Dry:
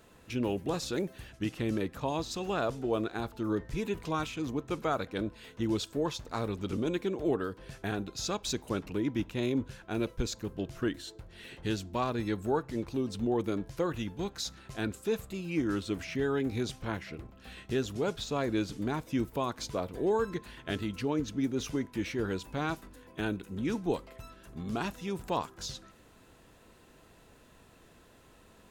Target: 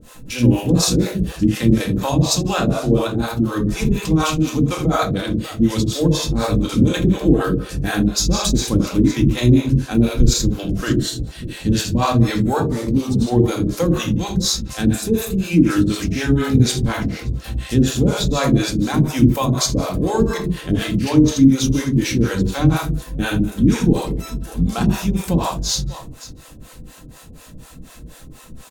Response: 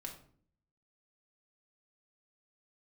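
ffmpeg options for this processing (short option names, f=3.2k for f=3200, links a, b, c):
-filter_complex "[0:a]bass=f=250:g=8,treble=f=4k:g=10,aecho=1:1:82|149|594:0.562|0.15|0.133[a];[1:a]atrim=start_sample=2205[b];[a][b]afir=irnorm=-1:irlink=0,acrossover=split=470[c][d];[c]aeval=exprs='val(0)*(1-1/2+1/2*cos(2*PI*4.1*n/s))':c=same[e];[d]aeval=exprs='val(0)*(1-1/2-1/2*cos(2*PI*4.1*n/s))':c=same[f];[e][f]amix=inputs=2:normalize=0,alimiter=level_in=19dB:limit=-1dB:release=50:level=0:latency=1,volume=-1dB"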